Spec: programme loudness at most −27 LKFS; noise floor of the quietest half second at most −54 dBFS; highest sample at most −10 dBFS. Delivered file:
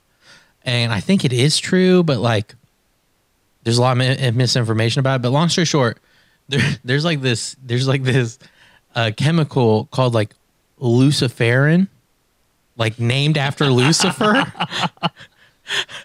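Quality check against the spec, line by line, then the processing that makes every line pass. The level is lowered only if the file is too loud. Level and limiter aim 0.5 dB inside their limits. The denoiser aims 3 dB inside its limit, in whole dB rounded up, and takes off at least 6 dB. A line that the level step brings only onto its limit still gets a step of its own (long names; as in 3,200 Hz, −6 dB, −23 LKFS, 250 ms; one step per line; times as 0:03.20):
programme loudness −17.5 LKFS: out of spec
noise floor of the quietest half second −63 dBFS: in spec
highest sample −4.5 dBFS: out of spec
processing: level −10 dB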